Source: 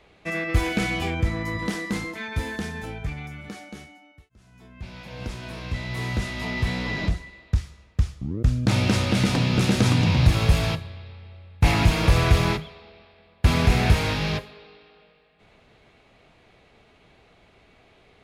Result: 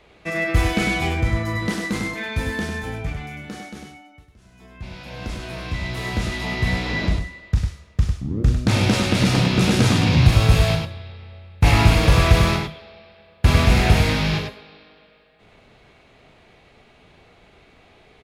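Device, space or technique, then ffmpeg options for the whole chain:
slapback doubling: -filter_complex "[0:a]asplit=3[link_01][link_02][link_03];[link_02]adelay=38,volume=-7dB[link_04];[link_03]adelay=100,volume=-5dB[link_05];[link_01][link_04][link_05]amix=inputs=3:normalize=0,volume=2.5dB"

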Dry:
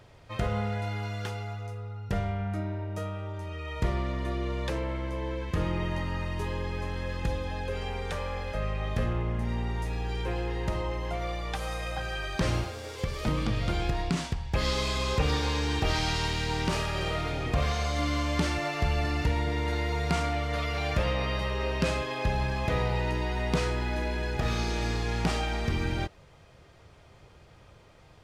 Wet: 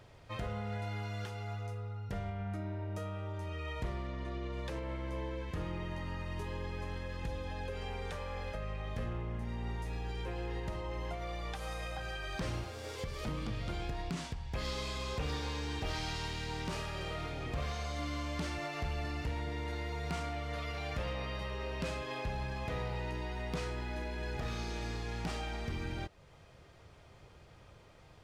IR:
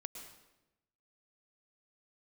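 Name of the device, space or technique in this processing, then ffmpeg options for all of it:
clipper into limiter: -filter_complex "[0:a]asettb=1/sr,asplit=3[link_01][link_02][link_03];[link_01]atrim=end=4.074[link_04];[link_02]atrim=start=4.07:end=4.53,asetpts=PTS-STARTPTS,afade=type=in:duration=0.004:curve=qsin,afade=type=out:start_time=0.456:duration=0.004:curve=qsin,lowpass=7000[link_05];[link_03]atrim=start=4.526[link_06];[link_04][link_05]acrossfade=duration=0.004:curve1=hsin:curve2=qsin[link_07];[link_07][link_06]acrossfade=duration=0.004:curve1=qsin:curve2=hsin,asoftclip=type=hard:threshold=-21dB,alimiter=level_in=3.5dB:limit=-24dB:level=0:latency=1:release=296,volume=-3.5dB,volume=-3dB"

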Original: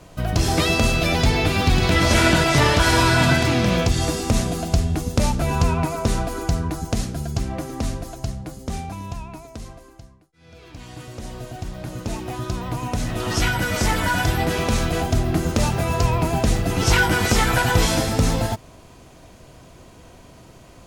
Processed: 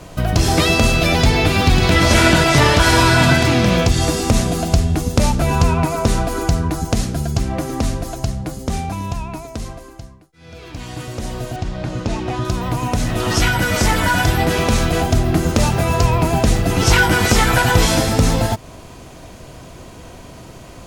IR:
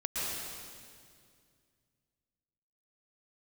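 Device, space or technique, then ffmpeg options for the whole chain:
parallel compression: -filter_complex "[0:a]asettb=1/sr,asplit=3[link_01][link_02][link_03];[link_01]atrim=end=11.564[link_04];[link_02]atrim=start=11.56:end=12.45,asetpts=PTS-STARTPTS,afade=type=in:duration=0.004:curve=qsin,afade=type=out:start_time=0.886:duration=0.004:curve=qsin,lowpass=5600[link_05];[link_03]atrim=start=12.446[link_06];[link_04][link_05]acrossfade=duration=0.004:curve1=hsin:curve2=qsin[link_07];[link_07][link_06]acrossfade=duration=0.004:curve1=qsin:curve2=hsin,asplit=2[link_08][link_09];[link_09]acompressor=threshold=-28dB:ratio=6,volume=-0.5dB[link_10];[link_08][link_10]amix=inputs=2:normalize=0,volume=2.5dB"

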